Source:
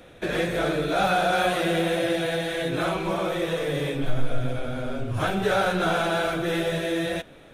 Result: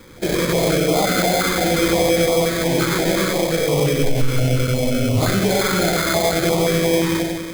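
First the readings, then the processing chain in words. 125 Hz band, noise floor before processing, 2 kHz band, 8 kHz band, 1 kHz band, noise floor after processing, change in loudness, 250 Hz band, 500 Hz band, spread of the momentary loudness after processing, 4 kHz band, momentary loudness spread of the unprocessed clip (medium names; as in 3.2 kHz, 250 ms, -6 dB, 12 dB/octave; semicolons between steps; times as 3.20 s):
+10.0 dB, -49 dBFS, +4.5 dB, +17.0 dB, +2.5 dB, -26 dBFS, +7.5 dB, +8.5 dB, +7.0 dB, 3 LU, +8.5 dB, 8 LU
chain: low-pass 9.9 kHz; on a send: bucket-brigade echo 94 ms, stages 4096, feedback 69%, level -3.5 dB; on the sum: sample-rate reducer 2.8 kHz, jitter 0%; loudness maximiser +14.5 dB; step-sequenced notch 5.7 Hz 680–1600 Hz; trim -7 dB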